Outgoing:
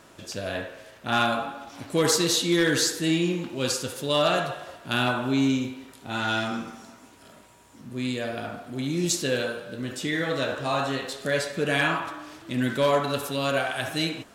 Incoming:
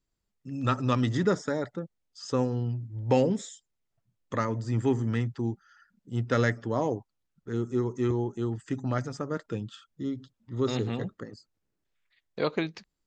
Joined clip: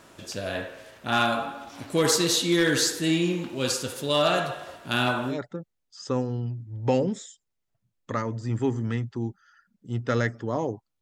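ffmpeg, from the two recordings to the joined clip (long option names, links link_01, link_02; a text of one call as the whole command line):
ffmpeg -i cue0.wav -i cue1.wav -filter_complex "[0:a]apad=whole_dur=11.01,atrim=end=11.01,atrim=end=5.39,asetpts=PTS-STARTPTS[link_01];[1:a]atrim=start=1.48:end=7.24,asetpts=PTS-STARTPTS[link_02];[link_01][link_02]acrossfade=duration=0.14:curve1=tri:curve2=tri" out.wav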